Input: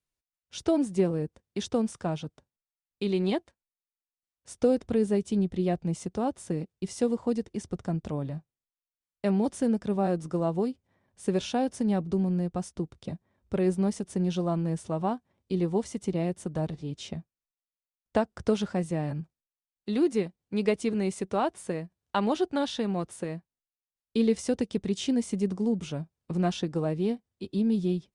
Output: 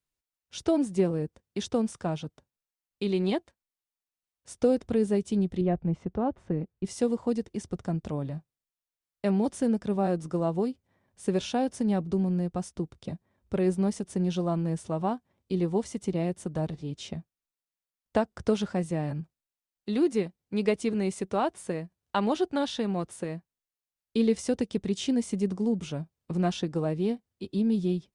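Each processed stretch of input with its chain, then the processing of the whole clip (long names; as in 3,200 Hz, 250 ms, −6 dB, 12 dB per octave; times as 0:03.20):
0:05.61–0:06.85: low-pass filter 1,900 Hz + low-shelf EQ 74 Hz +10.5 dB
whole clip: no processing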